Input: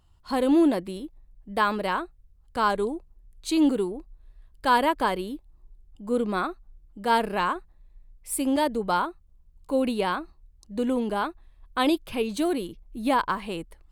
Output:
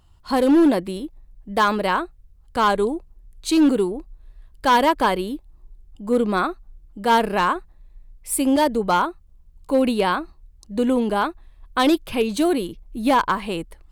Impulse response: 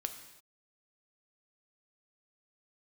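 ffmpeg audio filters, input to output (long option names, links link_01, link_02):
-af "asoftclip=type=hard:threshold=-17dB,volume=6dB"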